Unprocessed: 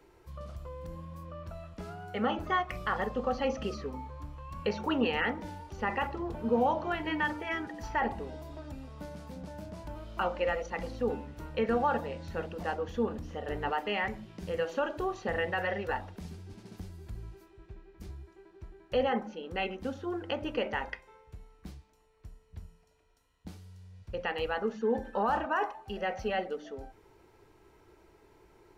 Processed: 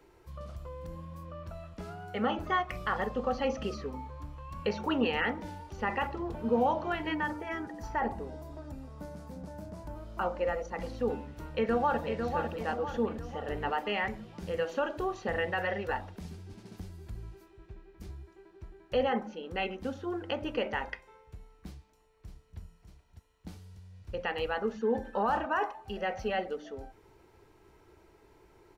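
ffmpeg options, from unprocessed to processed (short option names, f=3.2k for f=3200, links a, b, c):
-filter_complex "[0:a]asettb=1/sr,asplit=3[a][b][c];[a]atrim=end=7.144[d];[b]atrim=start=7.14:end=10.8,asetpts=PTS-STARTPTS,afade=t=in:d=0.004:c=qsin,afade=t=out:st=3.656:d=0.004:c=qsin,equalizer=f=3k:t=o:w=1.4:g=-8[e];[c]atrim=start=10.796[f];[d][e]acrossfade=d=0.004:c1=hsin:c2=qsin[g];[g][f]acrossfade=d=0.004:c1=qsin:c2=hsin,asplit=2[h][i];[i]afade=t=in:st=11.39:d=0.01,afade=t=out:st=12.06:d=0.01,aecho=0:1:500|1000|1500|2000|2500|3000:0.530884|0.265442|0.132721|0.0663606|0.0331803|0.0165901[j];[h][j]amix=inputs=2:normalize=0,asplit=2[k][l];[l]afade=t=in:st=21.67:d=0.01,afade=t=out:st=22.59:d=0.01,aecho=0:1:600|1200|1800|2400|3000|3600|4200|4800|5400|6000|6600|7200:0.375837|0.30067|0.240536|0.192429|0.153943|0.123154|0.0985235|0.0788188|0.0630551|0.050444|0.0403552|0.0322842[m];[k][m]amix=inputs=2:normalize=0"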